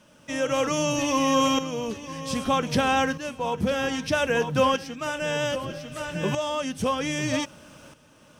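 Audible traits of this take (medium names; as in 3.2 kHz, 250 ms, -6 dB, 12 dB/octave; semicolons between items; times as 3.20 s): a quantiser's noise floor 12-bit, dither triangular; tremolo saw up 0.63 Hz, depth 70%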